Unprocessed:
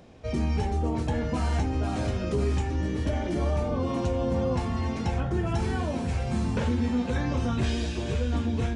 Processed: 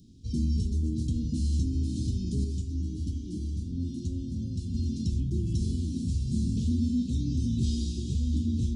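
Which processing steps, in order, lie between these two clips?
inverse Chebyshev band-stop filter 590–2,000 Hz, stop band 50 dB
0:02.44–0:04.74: flanger 1 Hz, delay 9.5 ms, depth 3 ms, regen +48%

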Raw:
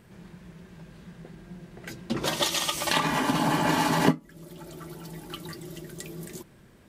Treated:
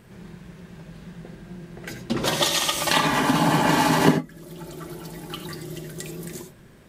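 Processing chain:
reverb whose tail is shaped and stops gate 110 ms rising, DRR 7.5 dB
level +4 dB

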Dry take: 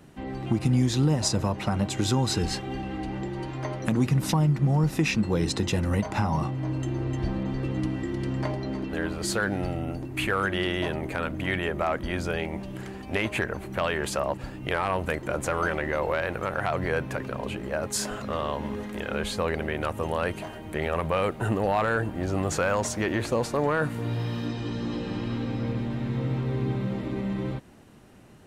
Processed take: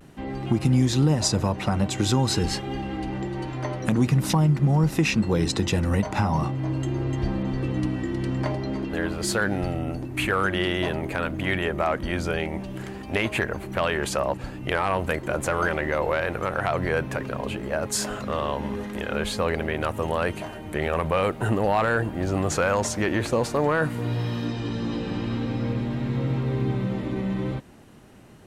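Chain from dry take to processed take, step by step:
pitch vibrato 0.47 Hz 31 cents
level +2.5 dB

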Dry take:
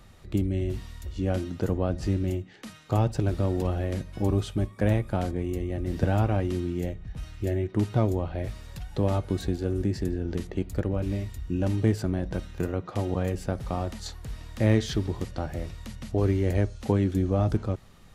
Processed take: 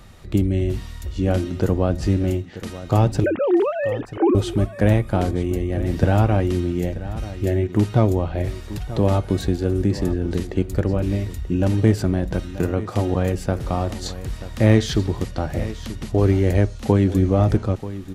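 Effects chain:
0:03.24–0:04.35: three sine waves on the formant tracks
single-tap delay 935 ms −14.5 dB
level +7 dB

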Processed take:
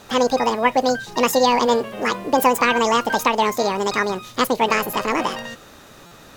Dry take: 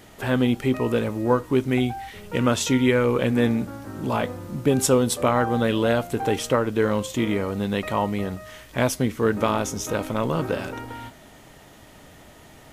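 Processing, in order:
low-pass filter 7,100 Hz 12 dB per octave
wrong playback speed 7.5 ips tape played at 15 ips
buffer that repeats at 0:06.06, samples 256, times 8
level +3.5 dB

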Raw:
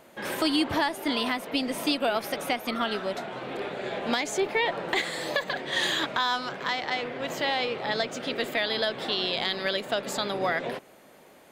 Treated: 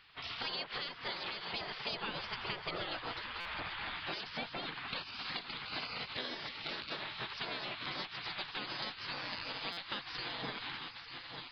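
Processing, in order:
echo machine with several playback heads 298 ms, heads first and third, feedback 59%, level −15 dB
downsampling to 11,025 Hz
0:01.93–0:03.97: low-shelf EQ 410 Hz +10 dB
gate on every frequency bin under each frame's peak −15 dB weak
downward compressor 3 to 1, threshold −41 dBFS, peak gain reduction 10.5 dB
buffer that repeats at 0:03.40/0:09.72, samples 256, times 8
level +2 dB

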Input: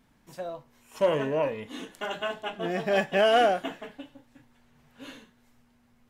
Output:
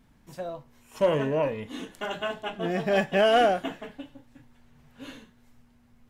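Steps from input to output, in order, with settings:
low-shelf EQ 180 Hz +8 dB

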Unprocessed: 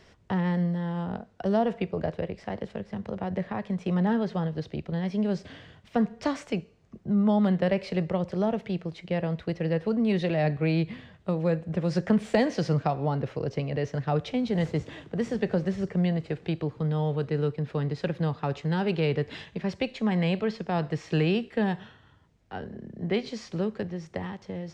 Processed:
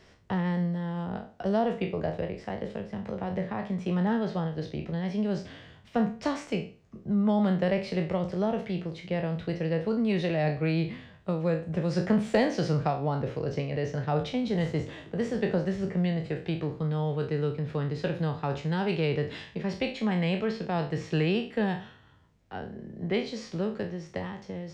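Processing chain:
peak hold with a decay on every bin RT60 0.38 s
level −2 dB

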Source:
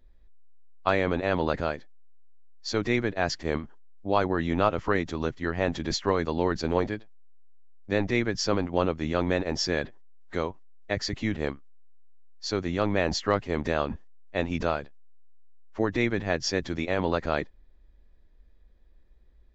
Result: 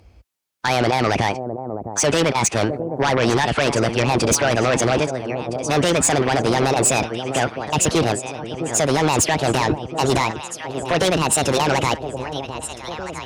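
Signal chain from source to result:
gliding playback speed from 132% → 163%
high-pass filter 60 Hz 24 dB per octave
brickwall limiter −17 dBFS, peak gain reduction 8.5 dB
on a send: delay that swaps between a low-pass and a high-pass 657 ms, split 840 Hz, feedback 74%, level −13 dB
on the sum: harmonic generator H 5 −7 dB, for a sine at −15.5 dBFS
level +6 dB

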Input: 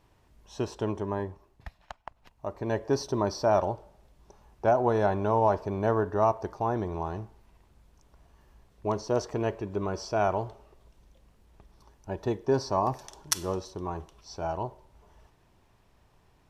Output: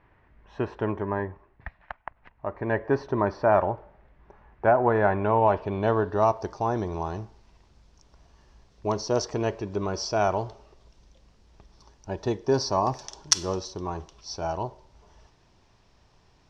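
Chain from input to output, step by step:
low-pass filter sweep 1,900 Hz → 5,500 Hz, 0:05.04–0:06.47
level +2 dB

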